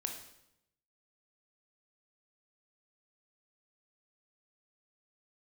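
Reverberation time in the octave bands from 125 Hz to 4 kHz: 1.1, 0.95, 0.85, 0.80, 0.75, 0.75 s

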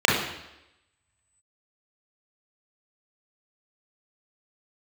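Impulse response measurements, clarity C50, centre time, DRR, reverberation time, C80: 2.0 dB, 57 ms, -4.5 dB, 0.90 s, 6.0 dB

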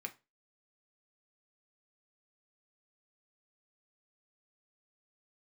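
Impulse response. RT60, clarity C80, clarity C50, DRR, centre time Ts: 0.25 s, 25.5 dB, 18.0 dB, 4.0 dB, 6 ms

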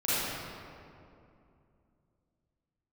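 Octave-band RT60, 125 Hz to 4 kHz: 3.5, 3.4, 2.8, 2.4, 1.9, 1.4 s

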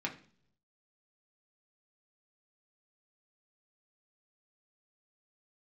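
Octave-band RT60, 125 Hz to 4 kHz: 1.0, 0.75, 0.65, 0.45, 0.45, 0.50 s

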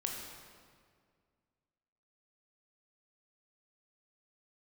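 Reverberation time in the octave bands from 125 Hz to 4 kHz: 2.4, 2.3, 2.1, 1.9, 1.6, 1.4 s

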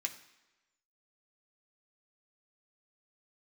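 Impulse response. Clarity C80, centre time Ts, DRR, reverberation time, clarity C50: 14.5 dB, 11 ms, 3.0 dB, 1.1 s, 12.0 dB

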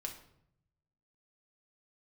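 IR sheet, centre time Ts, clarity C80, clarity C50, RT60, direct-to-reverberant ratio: 17 ms, 12.5 dB, 9.0 dB, 0.70 s, 1.0 dB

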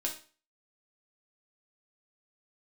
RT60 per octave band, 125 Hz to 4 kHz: 0.40, 0.40, 0.40, 0.35, 0.40, 0.35 s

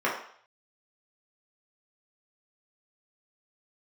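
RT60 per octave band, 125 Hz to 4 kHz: 0.55, 0.40, 0.55, 0.60, 0.55, 0.60 s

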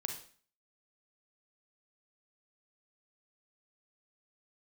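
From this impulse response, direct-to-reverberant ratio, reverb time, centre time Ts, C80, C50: 4.0 dB, 0.45 s, 20 ms, 11.0 dB, 6.5 dB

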